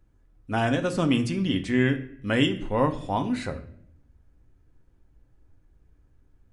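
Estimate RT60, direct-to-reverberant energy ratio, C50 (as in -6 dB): 0.65 s, 6.0 dB, 13.0 dB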